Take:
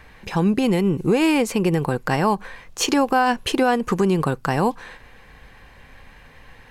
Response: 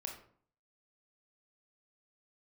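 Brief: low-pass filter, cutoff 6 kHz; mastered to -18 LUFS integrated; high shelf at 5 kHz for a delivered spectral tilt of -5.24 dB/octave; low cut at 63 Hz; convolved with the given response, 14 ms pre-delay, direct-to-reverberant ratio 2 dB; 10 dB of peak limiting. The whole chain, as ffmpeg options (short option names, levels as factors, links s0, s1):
-filter_complex "[0:a]highpass=63,lowpass=6000,highshelf=f=5000:g=7.5,alimiter=limit=0.15:level=0:latency=1,asplit=2[s0][s1];[1:a]atrim=start_sample=2205,adelay=14[s2];[s1][s2]afir=irnorm=-1:irlink=0,volume=0.944[s3];[s0][s3]amix=inputs=2:normalize=0,volume=2"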